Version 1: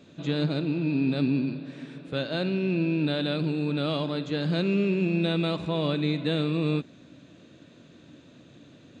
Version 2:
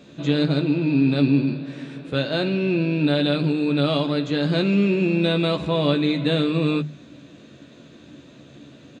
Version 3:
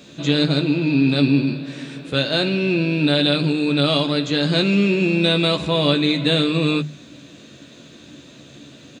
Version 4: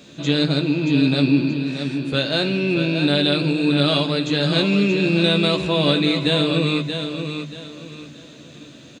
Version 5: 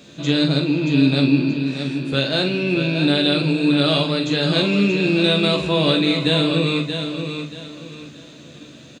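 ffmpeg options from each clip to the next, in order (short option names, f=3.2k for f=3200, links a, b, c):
-filter_complex "[0:a]bandreject=f=50:t=h:w=6,bandreject=f=100:t=h:w=6,bandreject=f=150:t=h:w=6,asplit=2[a][b];[b]adelay=14,volume=-7dB[c];[a][c]amix=inputs=2:normalize=0,volume=5.5dB"
-af "highshelf=f=3k:g=11,volume=1.5dB"
-af "aecho=1:1:629|1258|1887|2516:0.422|0.131|0.0405|0.0126,volume=-1dB"
-filter_complex "[0:a]asplit=2[a][b];[b]adelay=44,volume=-8dB[c];[a][c]amix=inputs=2:normalize=0"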